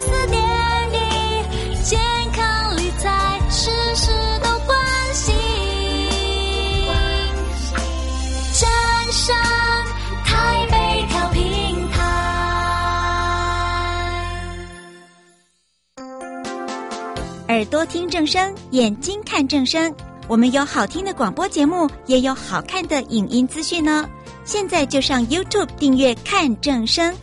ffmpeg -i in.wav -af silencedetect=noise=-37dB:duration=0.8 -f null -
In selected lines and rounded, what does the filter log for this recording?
silence_start: 15.04
silence_end: 15.97 | silence_duration: 0.94